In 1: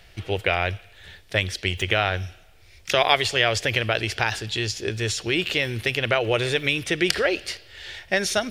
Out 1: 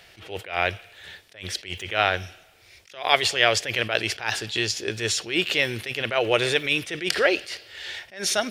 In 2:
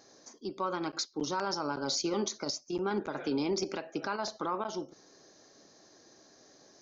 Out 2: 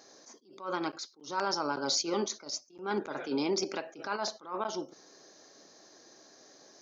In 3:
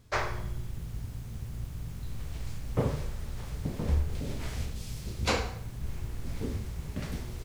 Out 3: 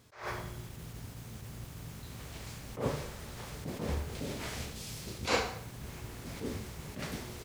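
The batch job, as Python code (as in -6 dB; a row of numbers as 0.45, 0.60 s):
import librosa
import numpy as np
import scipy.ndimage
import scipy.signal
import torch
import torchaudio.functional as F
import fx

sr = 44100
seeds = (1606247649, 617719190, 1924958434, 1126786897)

y = fx.highpass(x, sr, hz=280.0, slope=6)
y = fx.attack_slew(y, sr, db_per_s=150.0)
y = y * librosa.db_to_amplitude(3.0)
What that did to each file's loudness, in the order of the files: -0.5, 0.0, -4.0 LU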